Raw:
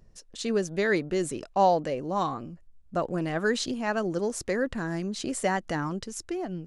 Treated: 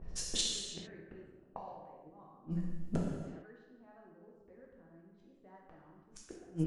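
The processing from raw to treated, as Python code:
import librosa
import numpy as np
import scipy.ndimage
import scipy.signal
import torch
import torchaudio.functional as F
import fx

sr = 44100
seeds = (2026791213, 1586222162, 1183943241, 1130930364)

y = fx.gate_flip(x, sr, shuts_db=-26.0, range_db=-40)
y = fx.rev_gated(y, sr, seeds[0], gate_ms=480, shape='falling', drr_db=-3.5)
y = fx.env_lowpass(y, sr, base_hz=930.0, full_db=-41.5)
y = F.gain(torch.from_numpy(y), 6.0).numpy()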